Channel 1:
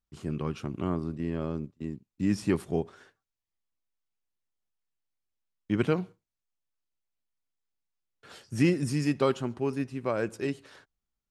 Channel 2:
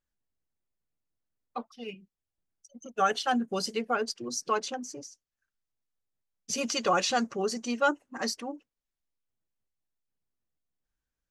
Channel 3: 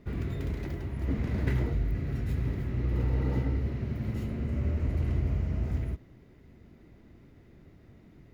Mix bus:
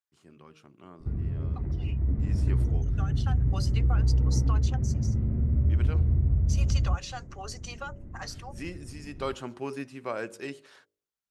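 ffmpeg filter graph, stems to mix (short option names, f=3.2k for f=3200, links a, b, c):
-filter_complex "[0:a]highpass=f=770:p=1,volume=-1dB,afade=t=in:st=9.08:d=0.43:silence=0.251189,asplit=2[a][b];[1:a]highpass=f=630:w=0.5412,highpass=f=630:w=1.3066,acompressor=threshold=-35dB:ratio=6,volume=-6dB[c];[2:a]lowpass=1.3k,lowshelf=f=240:g=8.5,acompressor=threshold=-33dB:ratio=2,adelay=1000,volume=-5dB[d];[b]apad=whole_len=498600[e];[c][e]sidechaincompress=threshold=-49dB:ratio=8:attack=21:release=1090[f];[a][f][d]amix=inputs=3:normalize=0,lowshelf=f=190:g=8.5,dynaudnorm=f=330:g=13:m=4.5dB,bandreject=f=51.42:t=h:w=4,bandreject=f=102.84:t=h:w=4,bandreject=f=154.26:t=h:w=4,bandreject=f=205.68:t=h:w=4,bandreject=f=257.1:t=h:w=4,bandreject=f=308.52:t=h:w=4,bandreject=f=359.94:t=h:w=4,bandreject=f=411.36:t=h:w=4,bandreject=f=462.78:t=h:w=4,bandreject=f=514.2:t=h:w=4,bandreject=f=565.62:t=h:w=4,bandreject=f=617.04:t=h:w=4"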